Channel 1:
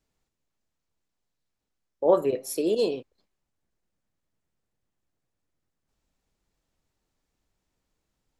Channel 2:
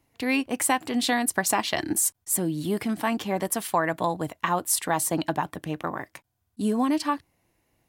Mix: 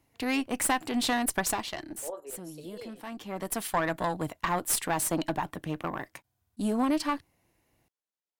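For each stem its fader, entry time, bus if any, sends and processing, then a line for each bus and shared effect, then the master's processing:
−14.0 dB, 0.00 s, no send, high-pass filter 450 Hz 12 dB per octave; shaped tremolo saw up 10 Hz, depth 55%
−1.0 dB, 0.00 s, no send, one-sided soft clipper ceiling −23.5 dBFS; automatic ducking −13 dB, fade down 0.60 s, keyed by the first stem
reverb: not used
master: no processing

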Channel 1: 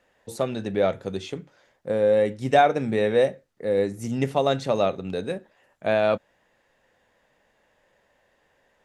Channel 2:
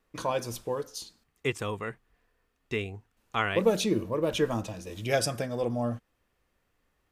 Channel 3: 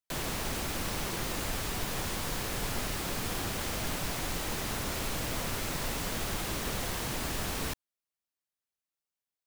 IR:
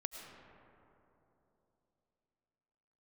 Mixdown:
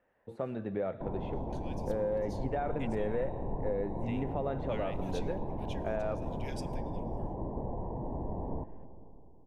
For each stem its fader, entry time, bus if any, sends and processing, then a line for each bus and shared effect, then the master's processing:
−8.0 dB, 0.00 s, bus A, send −13.5 dB, brickwall limiter −14 dBFS, peak gain reduction 9 dB
−14.5 dB, 1.35 s, no bus, send −9 dB, inverse Chebyshev high-pass filter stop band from 700 Hz, stop band 50 dB
−3.0 dB, 0.90 s, bus A, send −4.5 dB, Butterworth low-pass 1,000 Hz 96 dB per octave
bus A: 0.0 dB, low-pass filter 2,200 Hz 12 dB per octave; downward compressor, threshold −31 dBFS, peak gain reduction 6 dB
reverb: on, RT60 3.3 s, pre-delay 65 ms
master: high-shelf EQ 4,800 Hz −10 dB

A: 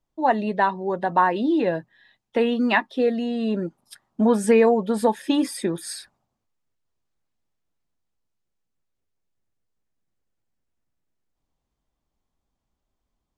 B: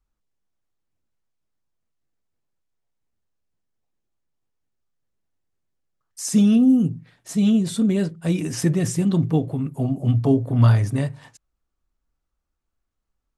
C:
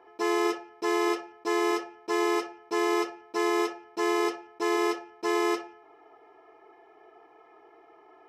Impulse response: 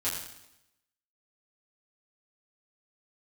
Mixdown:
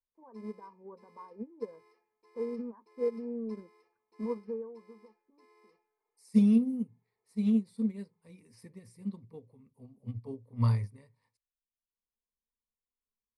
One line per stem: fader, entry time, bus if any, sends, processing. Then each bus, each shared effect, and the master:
+0.5 dB, 0.00 s, no send, downward compressor 4 to 1, threshold −25 dBFS, peak gain reduction 11 dB; brickwall limiter −22.5 dBFS, peak gain reduction 9.5 dB; Chebyshev low-pass with heavy ripple 1,600 Hz, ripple 6 dB; automatic ducking −22 dB, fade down 1.85 s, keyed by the second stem
−11.0 dB, 0.00 s, no send, no processing
−12.0 dB, 0.15 s, no send, brickwall limiter −25 dBFS, peak gain reduction 9.5 dB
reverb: not used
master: EQ curve with evenly spaced ripples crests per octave 0.91, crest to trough 14 dB; expander for the loud parts 2.5 to 1, over −32 dBFS

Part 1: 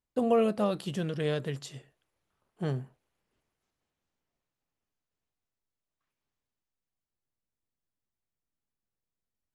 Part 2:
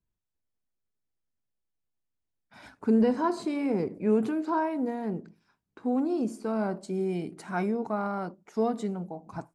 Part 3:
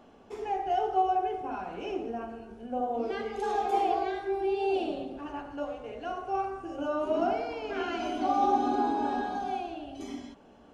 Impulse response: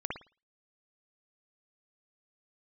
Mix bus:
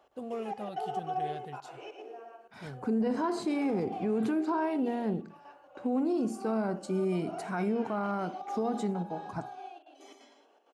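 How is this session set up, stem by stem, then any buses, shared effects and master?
−12.5 dB, 0.00 s, no send, no echo send, no processing
0.0 dB, 0.00 s, send −19 dB, no echo send, high-pass filter 43 Hz
−7.5 dB, 0.00 s, send −16 dB, echo send −5 dB, gate pattern "x.xxxxx.x.xx" 197 BPM; high-pass filter 400 Hz 24 dB per octave; automatic ducking −21 dB, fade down 0.45 s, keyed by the second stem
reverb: on, pre-delay 54 ms
echo: single-tap delay 114 ms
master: brickwall limiter −22.5 dBFS, peak gain reduction 10 dB

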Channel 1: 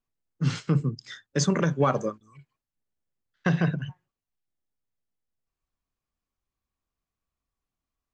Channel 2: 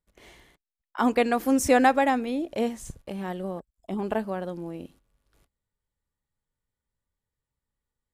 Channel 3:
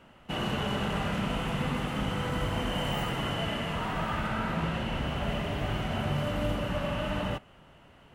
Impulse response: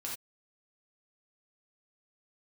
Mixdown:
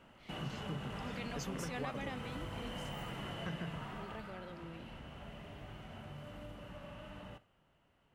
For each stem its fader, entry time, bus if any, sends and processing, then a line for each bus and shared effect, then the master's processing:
−9.0 dB, 0.00 s, no send, no processing
−13.5 dB, 0.00 s, no send, flat-topped bell 3,200 Hz +11.5 dB; transient designer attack −11 dB, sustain +3 dB
0:03.74 −6 dB → 0:04.46 −18 dB, 0.00 s, send −15 dB, no processing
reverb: on, pre-delay 3 ms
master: downward compressor 2 to 1, threshold −46 dBFS, peak gain reduction 12 dB

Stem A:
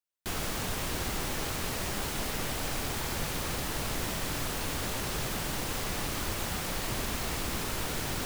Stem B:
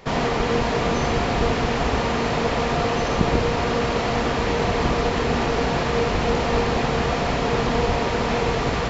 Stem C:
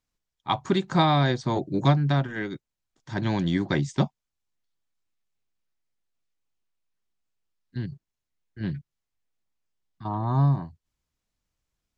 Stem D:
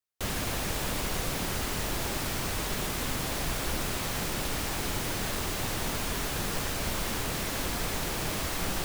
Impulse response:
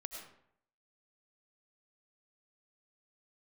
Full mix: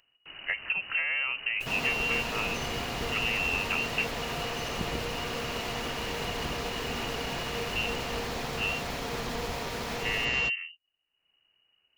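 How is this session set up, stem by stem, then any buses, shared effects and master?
−13.5 dB, 0.00 s, bus A, no send, automatic gain control gain up to 5 dB
−14.5 dB, 1.60 s, no bus, no send, high-shelf EQ 2,100 Hz +9.5 dB
−1.5 dB, 0.00 s, bus A, no send, no processing
−11.0 dB, 1.40 s, no bus, no send, comb filter 7.5 ms; brickwall limiter −24 dBFS, peak gain reduction 7 dB
bus A: 0.0 dB, voice inversion scrambler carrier 2,900 Hz; downward compressor 6 to 1, threshold −27 dBFS, peak gain reduction 11 dB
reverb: not used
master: upward compression, threshold −59 dBFS

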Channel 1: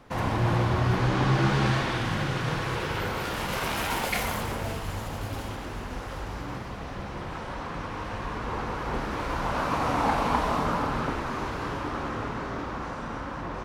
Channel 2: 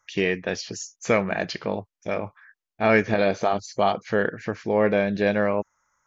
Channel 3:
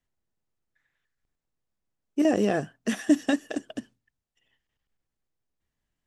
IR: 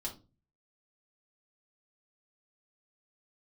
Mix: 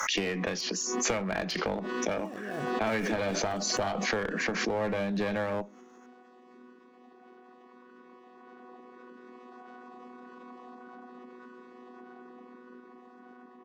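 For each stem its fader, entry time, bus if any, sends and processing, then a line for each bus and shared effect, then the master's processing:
−19.0 dB, 0.15 s, bus A, no send, channel vocoder with a chord as carrier bare fifth, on B3; brickwall limiter −22 dBFS, peak gain reduction 8 dB
+3.0 dB, 0.00 s, bus A, send −23 dB, Butterworth high-pass 170 Hz 96 dB per octave
−12.5 dB, 0.00 s, no bus, no send, gap after every zero crossing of 0.061 ms; downward compressor 3 to 1, threshold −31 dBFS, peak gain reduction 12 dB
bus A: 0.0 dB, asymmetric clip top −23 dBFS; downward compressor 6 to 1, threshold −30 dBFS, peak gain reduction 15 dB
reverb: on, RT60 0.30 s, pre-delay 4 ms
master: background raised ahead of every attack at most 27 dB per second

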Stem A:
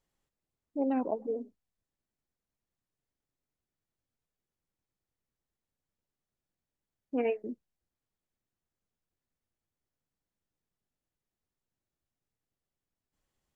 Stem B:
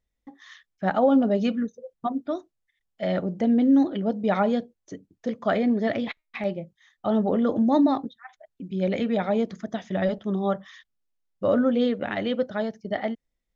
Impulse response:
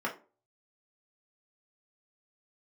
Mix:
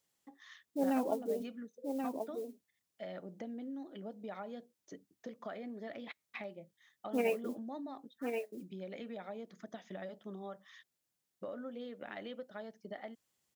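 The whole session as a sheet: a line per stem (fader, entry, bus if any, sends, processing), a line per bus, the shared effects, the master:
−2.5 dB, 0.00 s, no send, echo send −5.5 dB, noise that follows the level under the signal 33 dB
−8.0 dB, 0.00 s, no send, no echo send, high-pass filter 300 Hz 6 dB per octave; high-shelf EQ 2,700 Hz −12 dB; downward compressor 5 to 1, threshold −35 dBFS, peak gain reduction 16 dB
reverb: not used
echo: single-tap delay 1,083 ms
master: high-pass filter 110 Hz; high-shelf EQ 2,600 Hz +11 dB

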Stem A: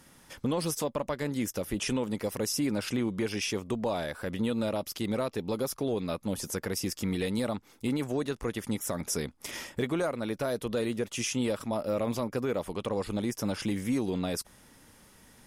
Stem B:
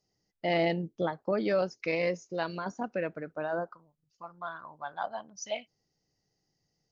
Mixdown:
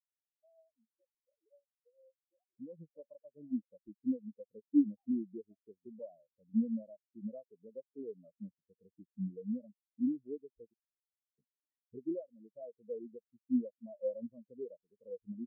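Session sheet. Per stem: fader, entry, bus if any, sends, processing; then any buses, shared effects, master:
−5.0 dB, 2.15 s, muted 0:10.74–0:11.38, no send, automatic gain control gain up to 8 dB
−3.0 dB, 0.00 s, no send, three sine waves on the formant tracks; downward compressor, threshold −34 dBFS, peak gain reduction 14 dB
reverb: not used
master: low-pass filter 1,500 Hz 12 dB per octave; upward compression, threshold −31 dBFS; every bin expanded away from the loudest bin 4 to 1

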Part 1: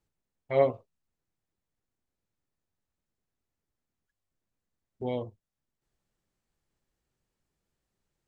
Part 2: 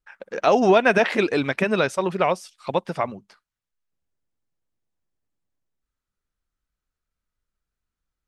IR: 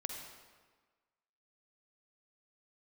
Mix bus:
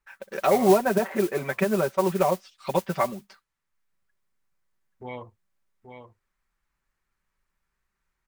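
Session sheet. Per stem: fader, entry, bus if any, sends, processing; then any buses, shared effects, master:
−9.0 dB, 0.00 s, no send, echo send −8 dB, flat-topped bell 1,500 Hz +13 dB; brickwall limiter −16.5 dBFS, peak gain reduction 8.5 dB
−4.5 dB, 0.00 s, no send, no echo send, treble cut that deepens with the level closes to 970 Hz, closed at −16.5 dBFS; comb filter 5.2 ms, depth 80%; noise that follows the level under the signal 19 dB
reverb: not used
echo: single-tap delay 831 ms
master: parametric band 290 Hz −2 dB 1.7 octaves; speech leveller within 4 dB 2 s

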